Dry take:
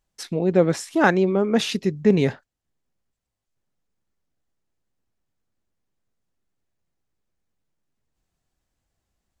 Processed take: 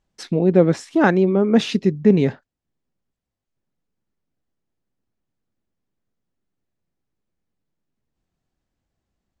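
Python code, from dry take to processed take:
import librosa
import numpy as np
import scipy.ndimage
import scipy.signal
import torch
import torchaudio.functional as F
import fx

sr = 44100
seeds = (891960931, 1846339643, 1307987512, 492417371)

y = fx.peak_eq(x, sr, hz=230.0, db=5.5, octaves=2.1)
y = fx.rider(y, sr, range_db=3, speed_s=0.5)
y = fx.air_absorb(y, sr, metres=61.0)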